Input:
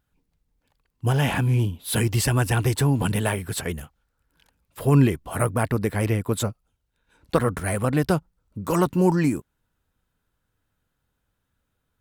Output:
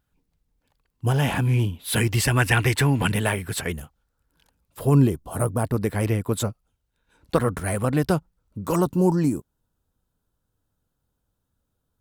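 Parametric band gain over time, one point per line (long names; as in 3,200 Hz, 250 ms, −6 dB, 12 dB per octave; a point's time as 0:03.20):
parametric band 2,100 Hz 1.2 octaves
−1.5 dB
from 0:01.45 +5 dB
from 0:02.36 +11.5 dB
from 0:03.12 +3.5 dB
from 0:03.76 −5 dB
from 0:04.94 −12 dB
from 0:05.74 −2 dB
from 0:08.76 −12.5 dB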